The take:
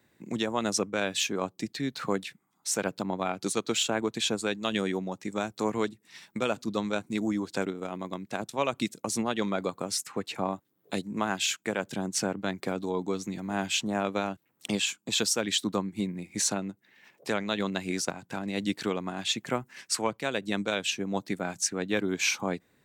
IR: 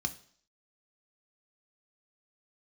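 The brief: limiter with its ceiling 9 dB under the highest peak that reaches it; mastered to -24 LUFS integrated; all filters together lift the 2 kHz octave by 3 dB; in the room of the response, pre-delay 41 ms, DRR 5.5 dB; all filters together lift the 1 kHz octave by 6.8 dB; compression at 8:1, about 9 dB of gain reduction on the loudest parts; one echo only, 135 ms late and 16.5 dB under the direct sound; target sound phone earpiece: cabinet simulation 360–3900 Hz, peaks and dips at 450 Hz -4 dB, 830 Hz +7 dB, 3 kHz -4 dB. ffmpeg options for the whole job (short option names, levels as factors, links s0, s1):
-filter_complex "[0:a]equalizer=f=1000:t=o:g=4,equalizer=f=2000:t=o:g=3.5,acompressor=threshold=0.0316:ratio=8,alimiter=limit=0.0668:level=0:latency=1,aecho=1:1:135:0.15,asplit=2[s0][s1];[1:a]atrim=start_sample=2205,adelay=41[s2];[s1][s2]afir=irnorm=-1:irlink=0,volume=0.398[s3];[s0][s3]amix=inputs=2:normalize=0,highpass=360,equalizer=f=450:t=q:w=4:g=-4,equalizer=f=830:t=q:w=4:g=7,equalizer=f=3000:t=q:w=4:g=-4,lowpass=f=3900:w=0.5412,lowpass=f=3900:w=1.3066,volume=5.31"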